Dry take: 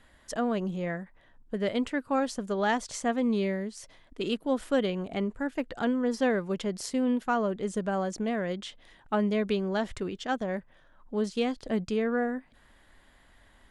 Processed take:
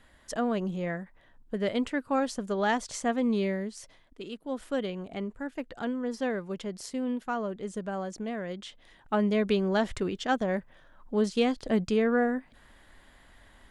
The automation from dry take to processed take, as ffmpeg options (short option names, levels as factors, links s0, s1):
-af "volume=5.01,afade=t=out:st=3.76:d=0.53:silence=0.281838,afade=t=in:st=4.29:d=0.36:silence=0.473151,afade=t=in:st=8.49:d=1.21:silence=0.421697"